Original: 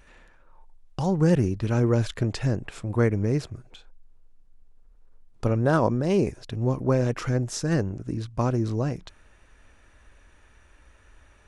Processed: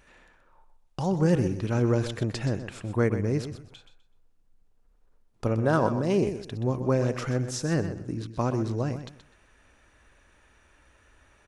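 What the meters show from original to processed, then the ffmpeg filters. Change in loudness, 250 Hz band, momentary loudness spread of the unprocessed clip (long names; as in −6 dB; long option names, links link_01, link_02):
−2.0 dB, −2.0 dB, 9 LU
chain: -filter_complex "[0:a]lowshelf=frequency=69:gain=-8.5,asplit=2[link_01][link_02];[link_02]aecho=0:1:126|252|378:0.299|0.0716|0.0172[link_03];[link_01][link_03]amix=inputs=2:normalize=0,volume=-1.5dB"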